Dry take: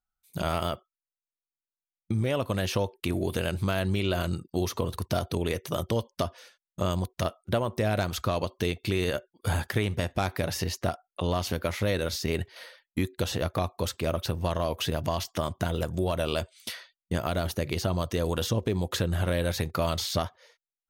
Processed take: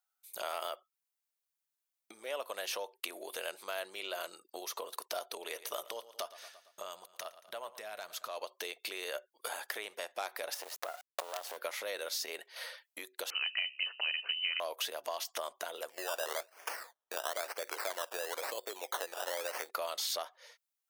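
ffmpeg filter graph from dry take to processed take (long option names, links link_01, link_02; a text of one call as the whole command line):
ffmpeg -i in.wav -filter_complex "[0:a]asettb=1/sr,asplit=3[link_01][link_02][link_03];[link_01]atrim=end=5.244[link_04];[link_02]atrim=start=5.24:end=8.28,asetpts=PTS-STARTPTS,afade=type=in:duration=0.004:curve=qsin,afade=type=out:start_time=3.036:duration=0.004:curve=qsin,bandreject=frequency=530:width=15,asubboost=boost=11.5:cutoff=120,aecho=1:1:114|228|342|456:0.133|0.0613|0.0282|0.013,atrim=end_sample=134064[link_05];[link_03]atrim=start=8.276[link_06];[link_04][link_05]acrossfade=duration=0.004:curve1=hsin:curve2=qsin[link_07];[link_07][link_06]acrossfade=duration=0.004:curve1=qsin:curve2=hsin,asettb=1/sr,asplit=3[link_08][link_09][link_10];[link_08]atrim=end=10.544[link_11];[link_09]atrim=start=10.54:end=11.57,asetpts=PTS-STARTPTS,afade=type=in:duration=0.004:curve=qsin,afade=type=out:start_time=1.026:duration=0.004:curve=qsin,acompressor=threshold=-36dB:ratio=5:attack=3.2:release=140:knee=1:detection=peak,equalizer=frequency=650:width=0.84:gain=12.5,acrusher=bits=5:dc=4:mix=0:aa=0.000001[link_12];[link_10]atrim=start=11.566[link_13];[link_11][link_12]acrossfade=duration=0.004:curve1=hsin:curve2=qsin[link_14];[link_14][link_13]acrossfade=duration=0.004:curve1=qsin:curve2=hsin,asettb=1/sr,asplit=3[link_15][link_16][link_17];[link_15]atrim=end=13.304[link_18];[link_16]atrim=start=13.3:end=14.6,asetpts=PTS-STARTPTS,afade=type=in:duration=0.004:curve=qsin,afade=type=out:start_time=1.296:duration=0.004:curve=qsin,bandreject=frequency=67.17:width_type=h:width=4,bandreject=frequency=134.34:width_type=h:width=4,bandreject=frequency=201.51:width_type=h:width=4,bandreject=frequency=268.68:width_type=h:width=4,bandreject=frequency=335.85:width_type=h:width=4,bandreject=frequency=403.02:width_type=h:width=4,bandreject=frequency=470.19:width_type=h:width=4,bandreject=frequency=537.36:width_type=h:width=4,bandreject=frequency=604.53:width_type=h:width=4,lowpass=frequency=2600:width_type=q:width=0.5098,lowpass=frequency=2600:width_type=q:width=0.6013,lowpass=frequency=2600:width_type=q:width=0.9,lowpass=frequency=2600:width_type=q:width=2.563,afreqshift=-3100[link_19];[link_17]atrim=start=14.596[link_20];[link_18][link_19]acrossfade=duration=0.004:curve1=hsin:curve2=qsin[link_21];[link_21][link_20]acrossfade=duration=0.004:curve1=qsin:curve2=hsin,asettb=1/sr,asplit=3[link_22][link_23][link_24];[link_22]atrim=end=15.894[link_25];[link_23]atrim=start=15.89:end=19.69,asetpts=PTS-STARTPTS,afade=type=in:duration=0.004:curve=qsin,afade=type=out:start_time=3.796:duration=0.004:curve=qsin,highpass=300,acrusher=samples=16:mix=1:aa=0.000001:lfo=1:lforange=9.6:lforate=1[link_26];[link_24]atrim=start=19.686[link_27];[link_25][link_26]acrossfade=duration=0.004:curve1=hsin:curve2=qsin[link_28];[link_28][link_27]acrossfade=duration=0.004:curve1=qsin:curve2=hsin,acompressor=threshold=-40dB:ratio=2.5,highpass=frequency=510:width=0.5412,highpass=frequency=510:width=1.3066,highshelf=frequency=7800:gain=6.5,volume=3dB" out.wav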